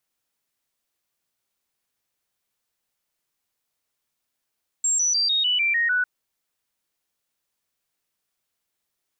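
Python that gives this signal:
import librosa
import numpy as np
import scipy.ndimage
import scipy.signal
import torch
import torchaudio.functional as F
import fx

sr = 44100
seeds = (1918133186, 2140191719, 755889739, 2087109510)

y = fx.stepped_sweep(sr, from_hz=7470.0, direction='down', per_octave=3, tones=8, dwell_s=0.15, gap_s=0.0, level_db=-18.5)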